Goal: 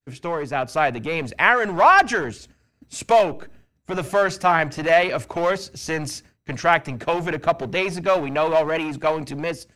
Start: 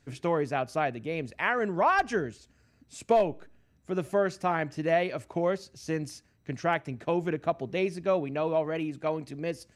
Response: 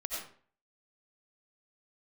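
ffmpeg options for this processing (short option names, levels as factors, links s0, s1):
-filter_complex "[0:a]agate=range=0.0224:threshold=0.002:ratio=3:detection=peak,dynaudnorm=f=470:g=3:m=3.16,acrossover=split=640[s0][s1];[s0]asoftclip=type=hard:threshold=0.0316[s2];[s2][s1]amix=inputs=2:normalize=0,volume=1.41"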